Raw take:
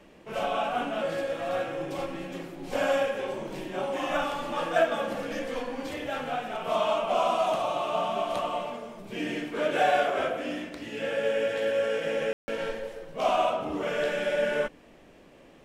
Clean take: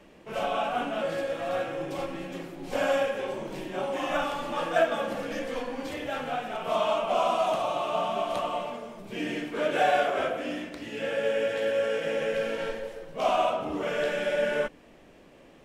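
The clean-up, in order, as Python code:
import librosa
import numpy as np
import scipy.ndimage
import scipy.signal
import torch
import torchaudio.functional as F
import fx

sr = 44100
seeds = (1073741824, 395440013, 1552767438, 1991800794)

y = fx.fix_ambience(x, sr, seeds[0], print_start_s=14.82, print_end_s=15.32, start_s=12.33, end_s=12.48)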